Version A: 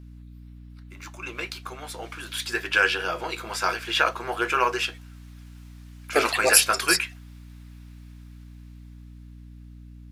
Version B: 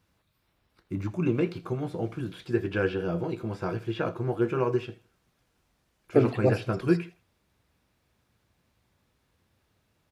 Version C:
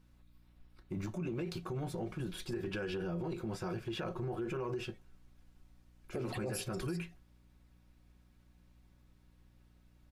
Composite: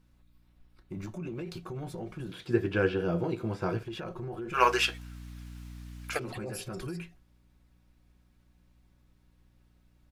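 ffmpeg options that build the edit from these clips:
-filter_complex "[2:a]asplit=3[s0][s1][s2];[s0]atrim=end=2.292[s3];[1:a]atrim=start=2.288:end=3.832[s4];[s1]atrim=start=3.828:end=4.62[s5];[0:a]atrim=start=4.52:end=6.2[s6];[s2]atrim=start=6.1[s7];[s3][s4]acrossfade=d=0.004:c1=hsin:c2=hsin[s8];[s8][s5]acrossfade=d=0.004:c1=hsin:c2=hsin[s9];[s9][s6]acrossfade=d=0.1:c1=tri:c2=tri[s10];[s10][s7]acrossfade=d=0.1:c1=tri:c2=tri"

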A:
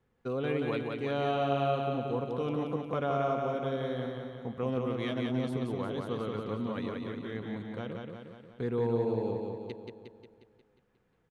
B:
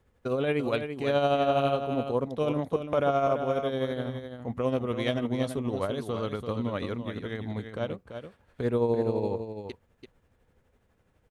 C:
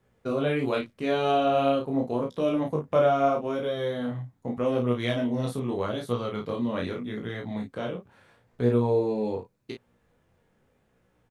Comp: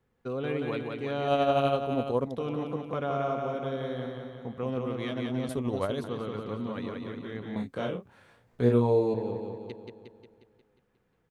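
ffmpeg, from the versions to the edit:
-filter_complex "[1:a]asplit=2[s0][s1];[0:a]asplit=4[s2][s3][s4][s5];[s2]atrim=end=1.282[s6];[s0]atrim=start=1.278:end=2.392[s7];[s3]atrim=start=2.388:end=5.492[s8];[s1]atrim=start=5.488:end=6.042[s9];[s4]atrim=start=6.038:end=7.562[s10];[2:a]atrim=start=7.558:end=9.142[s11];[s5]atrim=start=9.138[s12];[s6][s7]acrossfade=d=0.004:c1=hsin:c2=hsin[s13];[s13][s8]acrossfade=d=0.004:c1=hsin:c2=hsin[s14];[s14][s9]acrossfade=d=0.004:c1=hsin:c2=hsin[s15];[s15][s10]acrossfade=d=0.004:c1=hsin:c2=hsin[s16];[s16][s11]acrossfade=d=0.004:c1=hsin:c2=hsin[s17];[s17][s12]acrossfade=d=0.004:c1=hsin:c2=hsin"

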